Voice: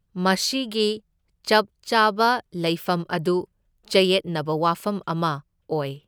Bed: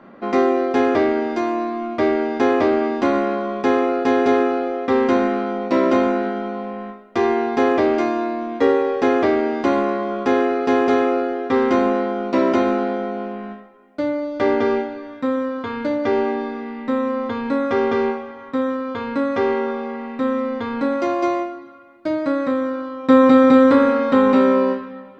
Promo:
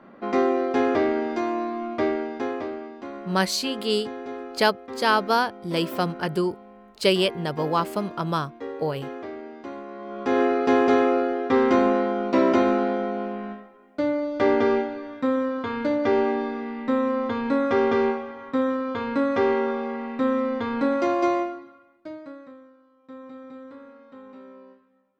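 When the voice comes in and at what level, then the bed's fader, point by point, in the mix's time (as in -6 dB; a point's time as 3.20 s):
3.10 s, -2.0 dB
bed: 1.98 s -4.5 dB
2.95 s -18.5 dB
9.87 s -18.5 dB
10.42 s -2 dB
21.50 s -2 dB
22.77 s -30.5 dB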